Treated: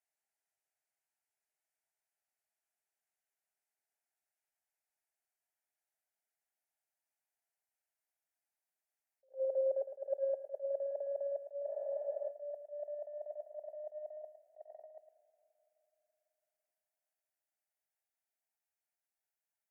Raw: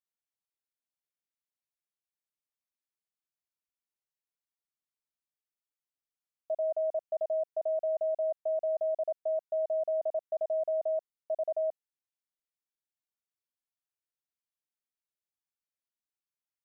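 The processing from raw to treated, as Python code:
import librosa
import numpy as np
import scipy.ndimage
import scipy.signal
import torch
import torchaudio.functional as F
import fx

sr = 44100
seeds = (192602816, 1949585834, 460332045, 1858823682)

p1 = fx.speed_glide(x, sr, from_pct=58, to_pct=111)
p2 = fx.fixed_phaser(p1, sr, hz=740.0, stages=8)
p3 = fx.level_steps(p2, sr, step_db=16)
p4 = p2 + (p3 * 10.0 ** (3.0 / 20.0))
p5 = fx.peak_eq(p4, sr, hz=630.0, db=5.5, octaves=1.0)
p6 = fx.over_compress(p5, sr, threshold_db=-32.0, ratio=-0.5)
p7 = scipy.signal.sosfilt(scipy.signal.ellip(4, 1.0, 40, 420.0, 'highpass', fs=sr, output='sos'), p6)
p8 = p7 + fx.echo_feedback(p7, sr, ms=109, feedback_pct=17, wet_db=-10.5, dry=0)
p9 = fx.rev_spring(p8, sr, rt60_s=3.7, pass_ms=(42, 55), chirp_ms=20, drr_db=15.0)
p10 = fx.spec_freeze(p9, sr, seeds[0], at_s=11.71, hold_s=0.58)
p11 = fx.attack_slew(p10, sr, db_per_s=300.0)
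y = p11 * 10.0 ** (-4.0 / 20.0)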